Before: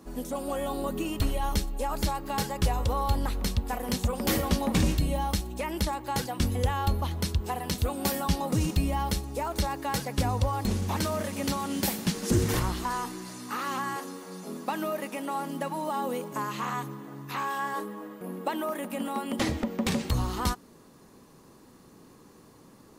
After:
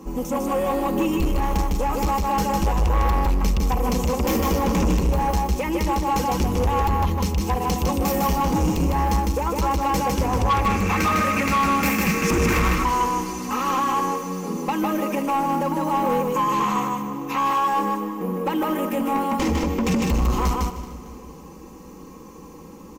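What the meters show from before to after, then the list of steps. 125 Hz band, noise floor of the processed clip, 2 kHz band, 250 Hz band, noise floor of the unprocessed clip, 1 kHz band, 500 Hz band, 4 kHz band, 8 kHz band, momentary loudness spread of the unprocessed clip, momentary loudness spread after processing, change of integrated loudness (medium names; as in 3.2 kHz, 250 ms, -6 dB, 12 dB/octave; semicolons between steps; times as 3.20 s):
+5.5 dB, -41 dBFS, +8.5 dB, +8.0 dB, -54 dBFS, +10.5 dB, +8.0 dB, +2.5 dB, +4.0 dB, 7 LU, 6 LU, +8.0 dB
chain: tilt shelf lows +3.5 dB; comb 3.8 ms, depth 68%; in parallel at +1 dB: peak limiter -20 dBFS, peak gain reduction 11 dB; on the sum: hard clipper -15.5 dBFS, distortion -14 dB; time-frequency box 10.50–12.68 s, 1.1–2.8 kHz +12 dB; rippled EQ curve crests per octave 0.76, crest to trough 9 dB; feedback delay 154 ms, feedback 18%, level -3 dB; saturation -14.5 dBFS, distortion -15 dB; on a send: two-band feedback delay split 910 Hz, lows 325 ms, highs 226 ms, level -16 dB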